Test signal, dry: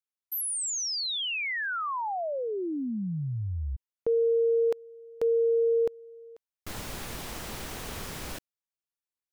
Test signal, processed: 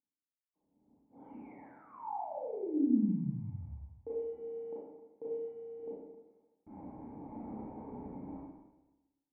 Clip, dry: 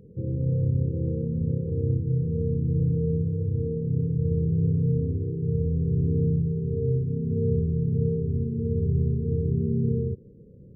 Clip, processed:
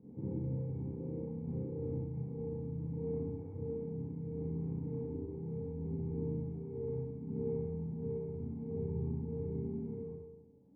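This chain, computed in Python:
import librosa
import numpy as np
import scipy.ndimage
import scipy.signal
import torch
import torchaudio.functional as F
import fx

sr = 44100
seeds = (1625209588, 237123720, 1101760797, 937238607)

y = fx.cvsd(x, sr, bps=16000)
y = fx.dereverb_blind(y, sr, rt60_s=1.7)
y = fx.highpass(y, sr, hz=180.0, slope=6)
y = fx.peak_eq(y, sr, hz=350.0, db=-10.5, octaves=0.29)
y = fx.rider(y, sr, range_db=4, speed_s=0.5)
y = fx.tremolo_shape(y, sr, shape='saw_down', hz=0.69, depth_pct=40)
y = fx.formant_cascade(y, sr, vowel='u')
y = fx.air_absorb(y, sr, metres=190.0)
y = fx.rev_schroeder(y, sr, rt60_s=1.1, comb_ms=29, drr_db=-8.5)
y = y * librosa.db_to_amplitude(3.5)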